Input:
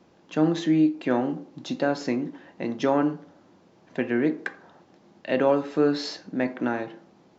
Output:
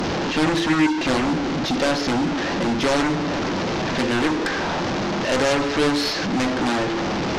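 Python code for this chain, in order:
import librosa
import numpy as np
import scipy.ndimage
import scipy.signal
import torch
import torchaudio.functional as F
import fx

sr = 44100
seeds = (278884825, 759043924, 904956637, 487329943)

p1 = fx.delta_mod(x, sr, bps=32000, step_db=-30.5)
p2 = fx.high_shelf(p1, sr, hz=2400.0, db=-3.5)
p3 = fx.fold_sine(p2, sr, drive_db=19, ceiling_db=-9.5)
y = p2 + (p3 * 10.0 ** (-11.0 / 20.0))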